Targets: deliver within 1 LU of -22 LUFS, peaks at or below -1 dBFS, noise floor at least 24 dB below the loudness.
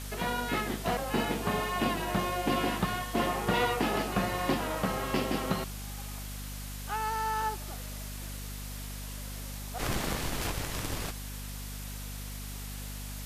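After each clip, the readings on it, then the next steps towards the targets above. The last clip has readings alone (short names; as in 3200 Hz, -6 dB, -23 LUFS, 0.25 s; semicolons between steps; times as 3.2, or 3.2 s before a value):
hum 50 Hz; harmonics up to 250 Hz; hum level -38 dBFS; noise floor -40 dBFS; noise floor target -57 dBFS; loudness -33.0 LUFS; peak -13.5 dBFS; loudness target -22.0 LUFS
-> de-hum 50 Hz, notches 5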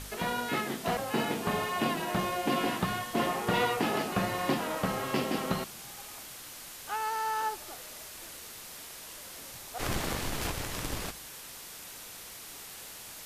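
hum none; noise floor -46 dBFS; noise floor target -58 dBFS
-> denoiser 12 dB, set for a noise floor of -46 dBFS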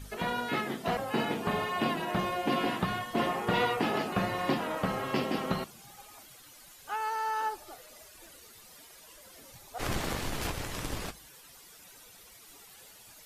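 noise floor -54 dBFS; noise floor target -56 dBFS
-> denoiser 6 dB, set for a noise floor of -54 dBFS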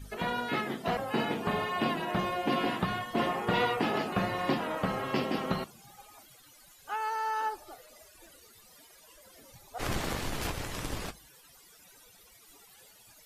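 noise floor -58 dBFS; loudness -32.0 LUFS; peak -14.5 dBFS; loudness target -22.0 LUFS
-> gain +10 dB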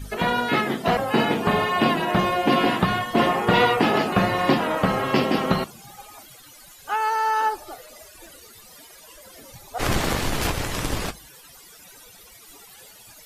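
loudness -22.0 LUFS; peak -4.5 dBFS; noise floor -48 dBFS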